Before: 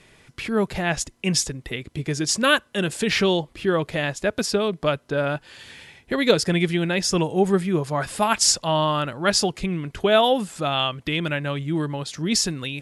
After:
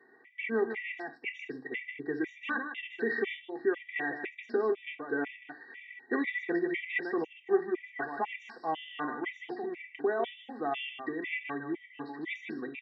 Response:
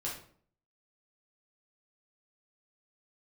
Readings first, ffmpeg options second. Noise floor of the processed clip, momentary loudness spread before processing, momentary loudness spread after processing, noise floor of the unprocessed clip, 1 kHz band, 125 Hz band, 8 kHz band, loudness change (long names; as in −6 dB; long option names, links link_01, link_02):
−58 dBFS, 10 LU, 8 LU, −58 dBFS, −12.5 dB, −28.5 dB, below −40 dB, −12.0 dB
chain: -filter_complex "[0:a]lowshelf=frequency=440:gain=-4,bandreject=frequency=60:width_type=h:width=6,bandreject=frequency=120:width_type=h:width=6,bandreject=frequency=180:width_type=h:width=6,bandreject=frequency=240:width_type=h:width=6,bandreject=frequency=300:width_type=h:width=6,bandreject=frequency=360:width_type=h:width=6,aecho=1:1:2.6:0.91,alimiter=limit=-13dB:level=0:latency=1:release=125,highpass=frequency=220:width=0.5412,highpass=frequency=220:width=1.3066,equalizer=frequency=230:width_type=q:width=4:gain=10,equalizer=frequency=600:width_type=q:width=4:gain=-4,equalizer=frequency=1300:width_type=q:width=4:gain=-8,equalizer=frequency=2000:width_type=q:width=4:gain=9,lowpass=frequency=2300:width=0.5412,lowpass=frequency=2300:width=1.3066,aecho=1:1:155:0.376,asplit=2[link_01][link_02];[1:a]atrim=start_sample=2205,atrim=end_sample=4410[link_03];[link_02][link_03]afir=irnorm=-1:irlink=0,volume=-8.5dB[link_04];[link_01][link_04]amix=inputs=2:normalize=0,afftfilt=real='re*gt(sin(2*PI*2*pts/sr)*(1-2*mod(floor(b*sr/1024/1900),2)),0)':imag='im*gt(sin(2*PI*2*pts/sr)*(1-2*mod(floor(b*sr/1024/1900),2)),0)':win_size=1024:overlap=0.75,volume=-8dB"